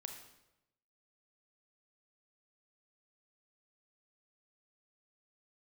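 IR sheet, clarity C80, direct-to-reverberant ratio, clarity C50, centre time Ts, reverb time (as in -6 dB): 8.5 dB, 4.0 dB, 6.0 dB, 26 ms, 0.90 s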